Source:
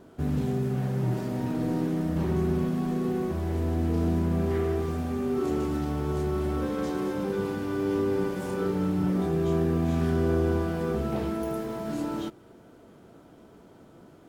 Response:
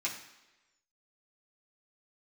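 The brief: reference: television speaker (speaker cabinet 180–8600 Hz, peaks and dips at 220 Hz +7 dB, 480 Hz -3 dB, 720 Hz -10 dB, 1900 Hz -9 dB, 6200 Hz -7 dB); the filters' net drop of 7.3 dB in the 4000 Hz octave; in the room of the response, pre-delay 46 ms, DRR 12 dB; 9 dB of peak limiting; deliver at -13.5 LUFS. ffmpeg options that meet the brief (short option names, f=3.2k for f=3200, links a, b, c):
-filter_complex "[0:a]equalizer=f=4k:t=o:g=-8.5,alimiter=limit=-23.5dB:level=0:latency=1,asplit=2[a][b];[1:a]atrim=start_sample=2205,adelay=46[c];[b][c]afir=irnorm=-1:irlink=0,volume=-16dB[d];[a][d]amix=inputs=2:normalize=0,highpass=f=180:w=0.5412,highpass=f=180:w=1.3066,equalizer=f=220:t=q:w=4:g=7,equalizer=f=480:t=q:w=4:g=-3,equalizer=f=720:t=q:w=4:g=-10,equalizer=f=1.9k:t=q:w=4:g=-9,equalizer=f=6.2k:t=q:w=4:g=-7,lowpass=f=8.6k:w=0.5412,lowpass=f=8.6k:w=1.3066,volume=18dB"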